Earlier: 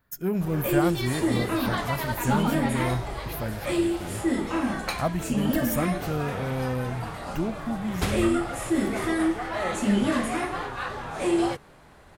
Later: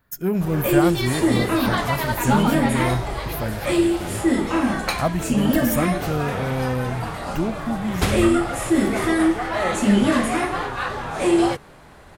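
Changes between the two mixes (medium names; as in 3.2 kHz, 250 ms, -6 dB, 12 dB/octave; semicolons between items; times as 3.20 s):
speech +4.5 dB; background +6.0 dB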